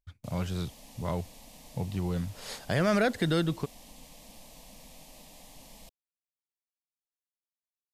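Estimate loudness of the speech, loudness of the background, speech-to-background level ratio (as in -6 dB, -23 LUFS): -31.5 LUFS, -51.0 LUFS, 19.5 dB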